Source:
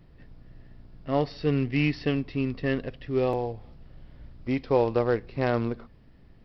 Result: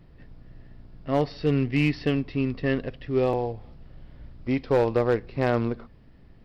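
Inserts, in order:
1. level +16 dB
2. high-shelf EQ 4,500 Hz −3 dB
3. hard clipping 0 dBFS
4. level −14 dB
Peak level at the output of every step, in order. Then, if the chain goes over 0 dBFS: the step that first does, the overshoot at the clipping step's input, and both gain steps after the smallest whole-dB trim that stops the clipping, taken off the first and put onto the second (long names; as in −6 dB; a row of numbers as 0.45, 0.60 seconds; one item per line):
+6.0, +6.0, 0.0, −14.0 dBFS
step 1, 6.0 dB
step 1 +10 dB, step 4 −8 dB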